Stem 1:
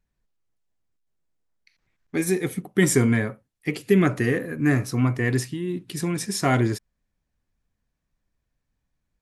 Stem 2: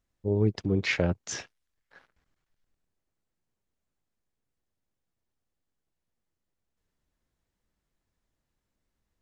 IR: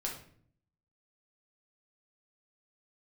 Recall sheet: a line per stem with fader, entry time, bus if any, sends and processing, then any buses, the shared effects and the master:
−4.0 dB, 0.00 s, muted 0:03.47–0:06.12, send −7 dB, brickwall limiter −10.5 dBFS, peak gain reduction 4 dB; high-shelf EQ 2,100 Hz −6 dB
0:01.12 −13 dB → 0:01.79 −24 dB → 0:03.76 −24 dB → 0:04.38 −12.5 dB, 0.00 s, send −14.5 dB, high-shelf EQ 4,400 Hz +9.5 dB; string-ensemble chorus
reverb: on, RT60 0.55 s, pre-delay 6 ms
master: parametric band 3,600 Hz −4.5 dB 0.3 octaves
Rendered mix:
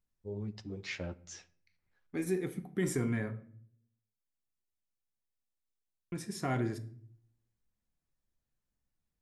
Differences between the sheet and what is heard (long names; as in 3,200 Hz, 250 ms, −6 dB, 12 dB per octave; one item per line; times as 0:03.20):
stem 1 −4.0 dB → −13.5 dB
master: missing parametric band 3,600 Hz −4.5 dB 0.3 octaves